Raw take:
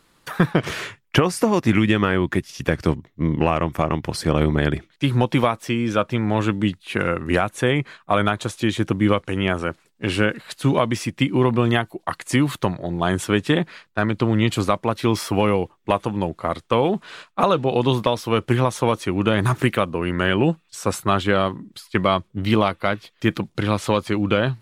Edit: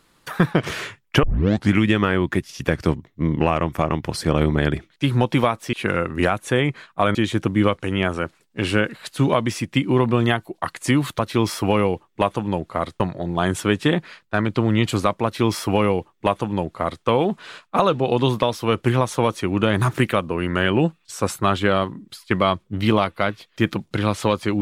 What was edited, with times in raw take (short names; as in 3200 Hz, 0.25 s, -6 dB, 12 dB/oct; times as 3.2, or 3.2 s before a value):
1.23 tape start 0.50 s
5.73–6.84 cut
8.26–8.6 cut
14.88–16.69 copy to 12.64